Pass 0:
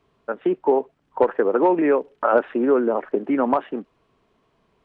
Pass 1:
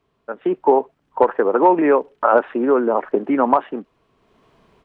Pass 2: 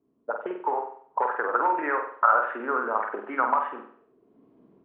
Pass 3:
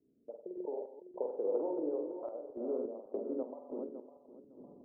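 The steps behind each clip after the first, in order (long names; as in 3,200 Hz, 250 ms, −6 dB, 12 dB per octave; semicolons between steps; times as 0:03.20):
automatic gain control gain up to 13.5 dB; dynamic equaliser 960 Hz, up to +6 dB, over −28 dBFS, Q 1.4; level −3.5 dB
downward compressor, threshold −15 dBFS, peak gain reduction 7 dB; envelope filter 270–1,400 Hz, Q 2.7, up, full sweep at −23 dBFS; on a send: flutter between parallel walls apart 8.1 metres, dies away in 0.54 s; on the sum: level +4.5 dB
feedback delay that plays each chunk backwards 278 ms, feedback 52%, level −7 dB; Butterworth low-pass 570 Hz 36 dB per octave; sample-and-hold tremolo, depth 75%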